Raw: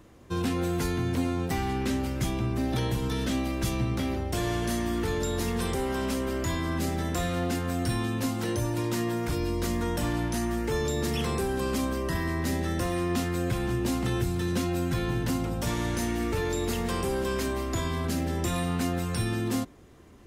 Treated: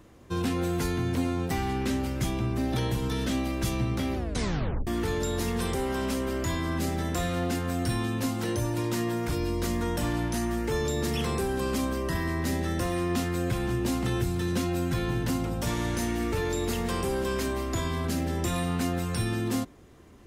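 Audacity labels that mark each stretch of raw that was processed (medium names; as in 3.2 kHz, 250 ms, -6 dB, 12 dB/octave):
4.160000	4.160000	tape stop 0.71 s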